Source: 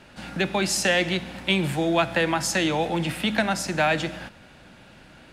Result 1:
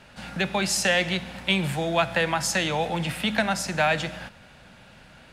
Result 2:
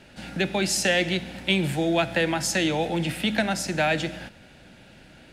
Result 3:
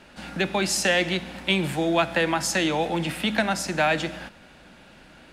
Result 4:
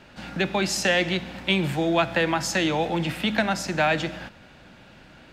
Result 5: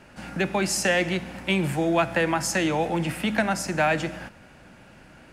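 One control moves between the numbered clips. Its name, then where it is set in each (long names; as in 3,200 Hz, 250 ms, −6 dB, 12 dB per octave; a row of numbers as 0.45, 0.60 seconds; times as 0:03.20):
parametric band, centre frequency: 320, 1,100, 110, 9,800, 3,700 Hertz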